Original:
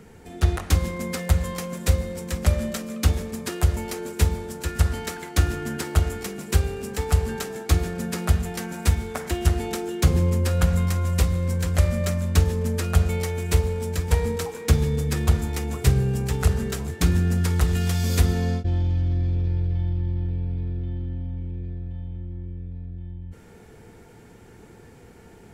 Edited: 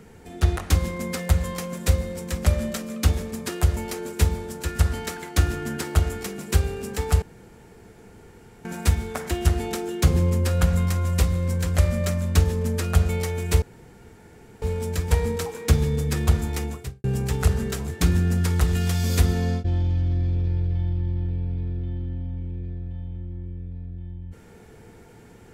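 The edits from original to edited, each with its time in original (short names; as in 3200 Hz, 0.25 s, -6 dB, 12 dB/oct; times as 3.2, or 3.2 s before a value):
7.22–8.65 room tone
13.62 insert room tone 1.00 s
15.65–16.04 fade out quadratic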